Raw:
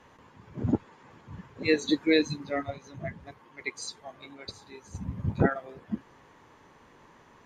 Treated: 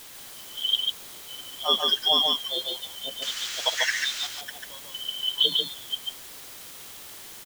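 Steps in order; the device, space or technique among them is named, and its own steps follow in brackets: split-band scrambled radio (four frequency bands reordered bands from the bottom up 2413; band-pass 330–3000 Hz; white noise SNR 13 dB); 3.22–4.27 s: high-order bell 3 kHz +14 dB 2.9 oct; delay 144 ms -3 dB; trim +4 dB

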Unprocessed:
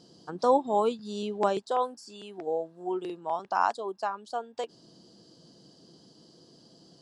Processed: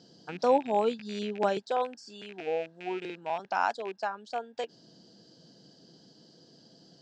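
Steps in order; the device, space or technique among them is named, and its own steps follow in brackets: car door speaker with a rattle (rattle on loud lows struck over -48 dBFS, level -34 dBFS; cabinet simulation 100–6800 Hz, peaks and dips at 350 Hz -4 dB, 1.1 kHz -9 dB, 1.6 kHz +5 dB)

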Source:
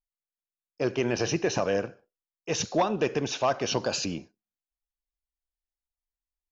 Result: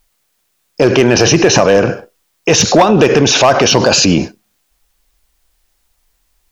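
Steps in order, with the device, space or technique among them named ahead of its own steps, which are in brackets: loud club master (compression 1.5:1, threshold -31 dBFS, peak gain reduction 4.5 dB; hard clipper -22.5 dBFS, distortion -20 dB; loudness maximiser +33 dB); trim -1 dB

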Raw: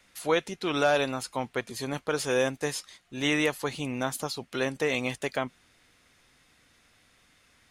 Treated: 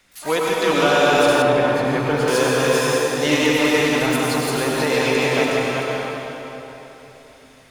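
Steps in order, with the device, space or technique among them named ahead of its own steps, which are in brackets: chunks repeated in reverse 254 ms, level -1 dB; shimmer-style reverb (harmony voices +12 st -11 dB; reverberation RT60 3.5 s, pre-delay 85 ms, DRR -4 dB); 1.42–2.28 s: tone controls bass +4 dB, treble -11 dB; trim +3 dB

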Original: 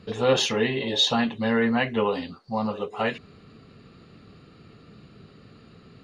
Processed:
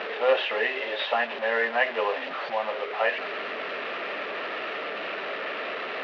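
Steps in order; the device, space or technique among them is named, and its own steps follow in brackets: digital answering machine (band-pass 370–3200 Hz; one-bit delta coder 32 kbps, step -26 dBFS; cabinet simulation 460–3300 Hz, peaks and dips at 610 Hz +9 dB, 1.8 kHz +6 dB, 2.6 kHz +4 dB); trim -1 dB

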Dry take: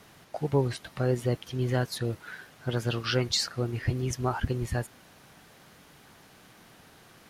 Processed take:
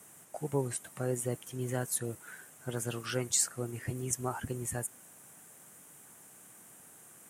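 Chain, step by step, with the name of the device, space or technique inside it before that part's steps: budget condenser microphone (high-pass 120 Hz 12 dB/octave; resonant high shelf 6.1 kHz +11.5 dB, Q 3); trim -6 dB

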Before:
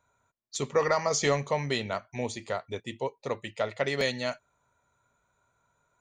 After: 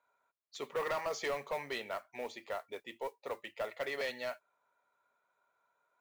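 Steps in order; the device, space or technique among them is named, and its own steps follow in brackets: carbon microphone (band-pass 450–3200 Hz; saturation -25.5 dBFS, distortion -11 dB; modulation noise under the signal 24 dB); trim -4 dB

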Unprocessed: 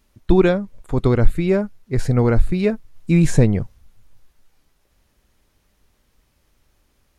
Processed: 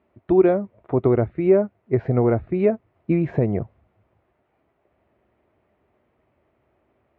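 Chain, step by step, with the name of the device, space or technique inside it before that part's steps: bass amplifier (compression 4:1, threshold -16 dBFS, peak gain reduction 10 dB; cabinet simulation 78–2200 Hz, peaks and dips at 90 Hz -4 dB, 170 Hz -4 dB, 370 Hz +7 dB, 660 Hz +10 dB, 1.6 kHz -5 dB)

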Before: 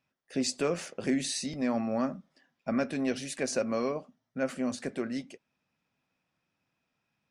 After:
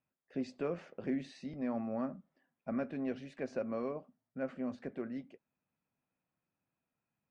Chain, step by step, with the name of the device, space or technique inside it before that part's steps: phone in a pocket (low-pass 3.1 kHz 12 dB/octave; treble shelf 2.1 kHz -9.5 dB); trim -6.5 dB

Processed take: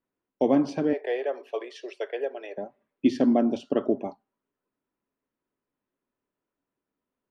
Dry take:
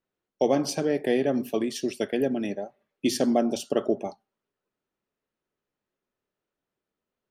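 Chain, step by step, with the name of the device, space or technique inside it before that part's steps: 0.93–2.58 s: steep high-pass 420 Hz 48 dB/octave; inside a cardboard box (low-pass 2.7 kHz 12 dB/octave; small resonant body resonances 270/990 Hz, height 8 dB); trim -1.5 dB

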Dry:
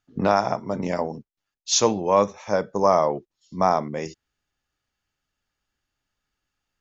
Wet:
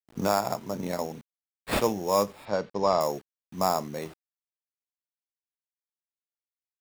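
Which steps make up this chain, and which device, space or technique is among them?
early 8-bit sampler (sample-rate reducer 6.1 kHz, jitter 0%; bit crusher 8-bit); 2.45–3.01 s: low-pass 5.2 kHz 24 dB/octave; trim -5.5 dB

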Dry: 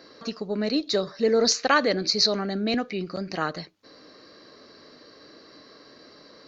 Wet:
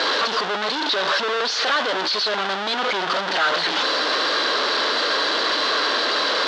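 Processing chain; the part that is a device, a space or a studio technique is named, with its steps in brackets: home computer beeper (one-bit comparator; cabinet simulation 550–4600 Hz, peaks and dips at 1 kHz +3 dB, 1.5 kHz +5 dB, 2.3 kHz -4 dB, 3.4 kHz +5 dB); trim +8.5 dB

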